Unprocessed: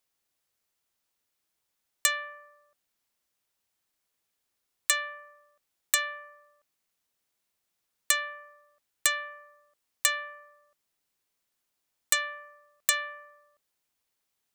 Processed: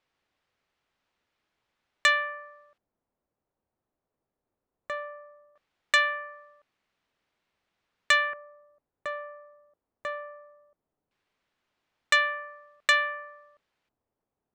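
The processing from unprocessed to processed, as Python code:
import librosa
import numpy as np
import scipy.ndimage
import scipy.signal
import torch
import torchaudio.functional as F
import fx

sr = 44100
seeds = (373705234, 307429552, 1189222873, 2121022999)

y = fx.filter_lfo_lowpass(x, sr, shape='square', hz=0.18, low_hz=700.0, high_hz=2800.0, q=0.74)
y = y * librosa.db_to_amplitude(8.0)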